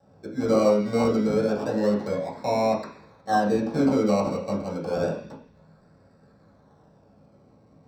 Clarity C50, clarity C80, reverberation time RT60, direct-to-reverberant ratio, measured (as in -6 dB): 7.0 dB, 10.0 dB, 0.50 s, -7.0 dB